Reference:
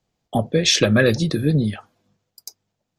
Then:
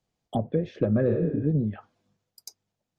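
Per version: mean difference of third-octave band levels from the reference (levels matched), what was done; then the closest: 7.0 dB: spectral replace 1.12–1.40 s, 260–8600 Hz both; low-pass that closes with the level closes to 670 Hz, closed at -16 dBFS; peaking EQ 9.8 kHz +3 dB 0.23 oct; trim -6 dB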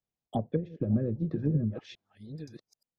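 10.5 dB: chunks repeated in reverse 651 ms, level -10 dB; low-pass that closes with the level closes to 320 Hz, closed at -14 dBFS; upward expansion 1.5:1, over -39 dBFS; trim -7.5 dB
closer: first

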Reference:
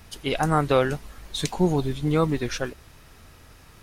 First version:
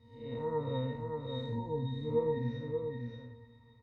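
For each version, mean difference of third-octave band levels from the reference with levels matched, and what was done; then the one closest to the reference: 13.0 dB: spectral blur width 177 ms; pitch-class resonator A#, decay 0.3 s; delay 578 ms -4.5 dB; trim +6.5 dB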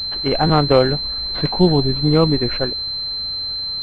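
7.0 dB: dynamic bell 1.3 kHz, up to -4 dB, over -39 dBFS, Q 1.4; buffer glitch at 0.46 s, samples 512, times 2; class-D stage that switches slowly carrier 4.1 kHz; trim +7.5 dB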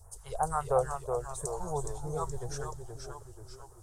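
9.0 dB: FFT filter 110 Hz 0 dB, 280 Hz -29 dB, 430 Hz -2 dB, 950 Hz +4 dB, 1.6 kHz -7 dB, 2.4 kHz -23 dB, 3.7 kHz -17 dB, 8.3 kHz +7 dB, 13 kHz -5 dB; phase shifter stages 2, 3 Hz, lowest notch 300–4100 Hz; ever faster or slower copies 331 ms, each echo -1 st, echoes 3, each echo -6 dB; trim -5.5 dB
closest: second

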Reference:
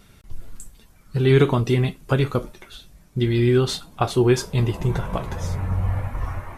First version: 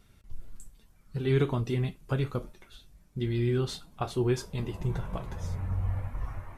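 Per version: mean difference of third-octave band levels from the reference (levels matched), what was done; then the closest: 1.5 dB: bass shelf 160 Hz +5 dB; flange 0.69 Hz, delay 2.5 ms, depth 4.4 ms, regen -83%; trim -7 dB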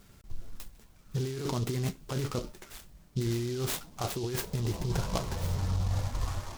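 8.5 dB: compressor with a negative ratio -22 dBFS, ratio -1; delay time shaken by noise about 4.4 kHz, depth 0.083 ms; trim -8 dB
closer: first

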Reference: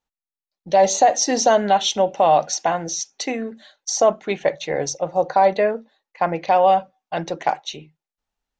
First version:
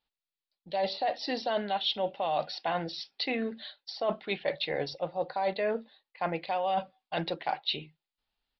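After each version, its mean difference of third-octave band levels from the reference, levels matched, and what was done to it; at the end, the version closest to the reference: 4.5 dB: peaking EQ 3.6 kHz +9.5 dB 1.4 oct; reverse; compression 6:1, threshold -24 dBFS, peak gain reduction 14.5 dB; reverse; resampled via 11.025 kHz; trim -3.5 dB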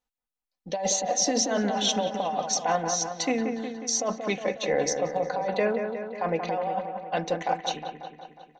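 8.0 dB: comb 4 ms, depth 48%; compressor with a negative ratio -19 dBFS, ratio -1; on a send: feedback echo behind a low-pass 181 ms, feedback 61%, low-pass 2.2 kHz, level -6 dB; on the sum: trim -7 dB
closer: first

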